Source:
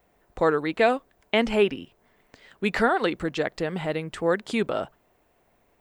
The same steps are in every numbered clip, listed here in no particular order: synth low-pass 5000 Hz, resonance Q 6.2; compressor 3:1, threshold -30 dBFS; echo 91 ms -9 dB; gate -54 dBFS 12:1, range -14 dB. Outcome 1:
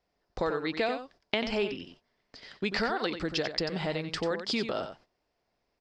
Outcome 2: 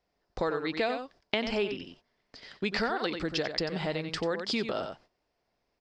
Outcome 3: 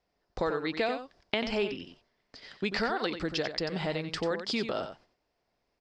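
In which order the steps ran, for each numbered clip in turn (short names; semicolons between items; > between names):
compressor > echo > gate > synth low-pass; echo > compressor > gate > synth low-pass; gate > synth low-pass > compressor > echo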